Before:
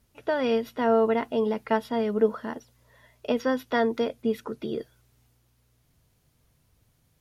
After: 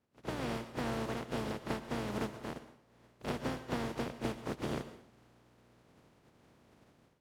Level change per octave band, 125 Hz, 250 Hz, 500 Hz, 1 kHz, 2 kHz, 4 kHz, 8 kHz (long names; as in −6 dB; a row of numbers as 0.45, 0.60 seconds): +2.0 dB, −10.5 dB, −16.0 dB, −11.5 dB, −9.0 dB, −6.0 dB, can't be measured